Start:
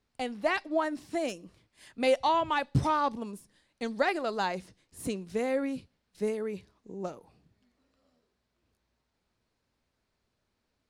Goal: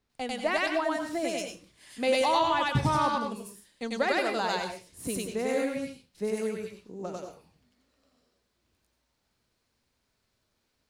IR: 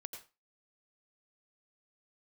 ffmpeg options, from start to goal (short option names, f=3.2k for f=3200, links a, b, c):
-filter_complex "[0:a]asplit=2[a][b];[1:a]atrim=start_sample=2205,highshelf=f=2.4k:g=10.5,adelay=97[c];[b][c]afir=irnorm=-1:irlink=0,volume=2dB[d];[a][d]amix=inputs=2:normalize=0,volume=-1dB"